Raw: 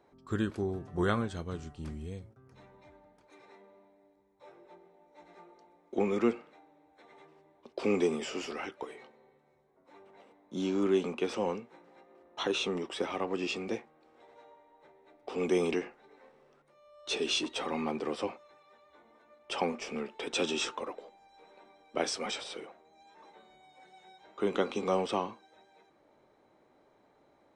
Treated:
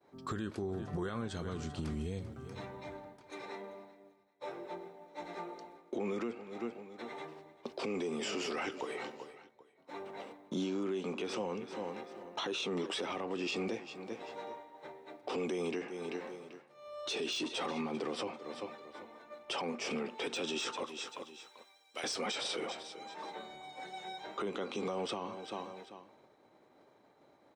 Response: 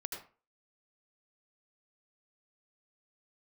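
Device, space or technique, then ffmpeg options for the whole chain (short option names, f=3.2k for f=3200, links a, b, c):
broadcast voice chain: -filter_complex "[0:a]agate=range=-33dB:threshold=-57dB:ratio=3:detection=peak,asettb=1/sr,asplit=3[a][b][c];[a]atrim=end=20.864[d];[b]atrim=start=20.86:end=22.04,asetpts=PTS-STARTPTS,afade=t=in:d=0.004:c=qsin,afade=t=out:st=1.176:d=0.004:c=qsin,aderivative[e];[c]atrim=start=22.036[f];[d][e]acrossfade=d=0.004:c1=hsin:c2=qsin[g];[g][f]acrossfade=d=0.004:c1=qsin:c2=hsin,highpass=82,aecho=1:1:390|780:0.1|0.024,deesser=0.75,acompressor=threshold=-44dB:ratio=5,equalizer=f=4.3k:t=o:w=0.77:g=2.5,alimiter=level_in=16dB:limit=-24dB:level=0:latency=1:release=15,volume=-16dB,volume=11.5dB"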